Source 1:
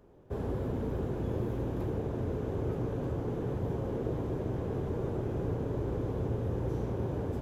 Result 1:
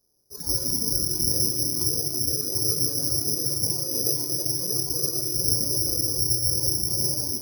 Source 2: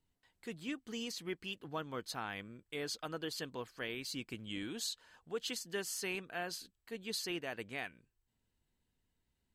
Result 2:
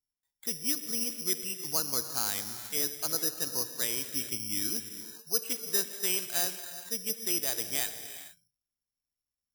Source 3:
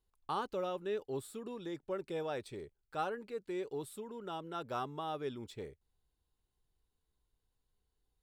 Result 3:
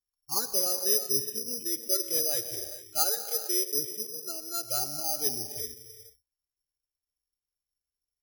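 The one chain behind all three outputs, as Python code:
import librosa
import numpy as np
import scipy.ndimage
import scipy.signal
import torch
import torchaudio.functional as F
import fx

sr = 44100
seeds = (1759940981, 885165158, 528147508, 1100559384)

y = fx.noise_reduce_blind(x, sr, reduce_db=22)
y = fx.rev_gated(y, sr, seeds[0], gate_ms=480, shape='flat', drr_db=8.0)
y = (np.kron(scipy.signal.resample_poly(y, 1, 8), np.eye(8)[0]) * 8)[:len(y)]
y = y * librosa.db_to_amplitude(1.5)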